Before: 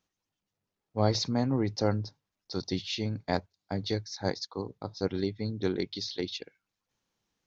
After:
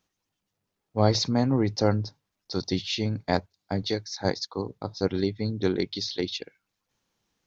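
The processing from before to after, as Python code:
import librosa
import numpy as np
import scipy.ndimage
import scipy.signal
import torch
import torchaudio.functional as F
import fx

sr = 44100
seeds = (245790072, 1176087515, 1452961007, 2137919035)

y = fx.highpass(x, sr, hz=210.0, slope=6, at=(3.82, 4.25))
y = F.gain(torch.from_numpy(y), 4.5).numpy()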